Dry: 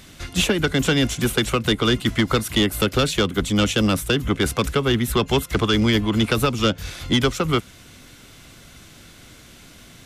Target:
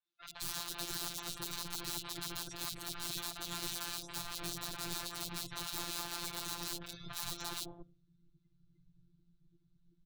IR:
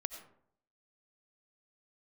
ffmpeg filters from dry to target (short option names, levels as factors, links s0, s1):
-filter_complex "[0:a]afftdn=nr=35:nf=-35,lowpass=f=6600:w=0.5412,lowpass=f=6600:w=1.3066,highshelf=f=4400:g=-4,aeval=exprs='(mod(17.8*val(0)+1,2)-1)/17.8':c=same,acrossover=split=640|3000[s0][s1][s2];[s2]adelay=50[s3];[s0]adelay=220[s4];[s4][s1][s3]amix=inputs=3:normalize=0,afftfilt=real='hypot(re,im)*cos(PI*b)':imag='0':win_size=1024:overlap=0.75,equalizer=f=125:t=o:w=0.33:g=7,equalizer=f=200:t=o:w=0.33:g=-11,equalizer=f=500:t=o:w=0.33:g=-10,equalizer=f=2000:t=o:w=0.33:g=-8,equalizer=f=4000:t=o:w=0.33:g=8,volume=0.447"